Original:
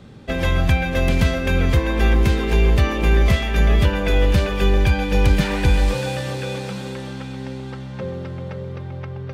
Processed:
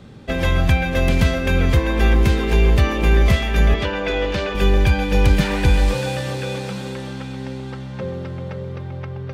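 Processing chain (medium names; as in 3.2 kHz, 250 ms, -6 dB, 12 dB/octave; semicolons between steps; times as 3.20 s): 3.74–4.55 s: three-band isolator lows -12 dB, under 250 Hz, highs -19 dB, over 6.6 kHz; trim +1 dB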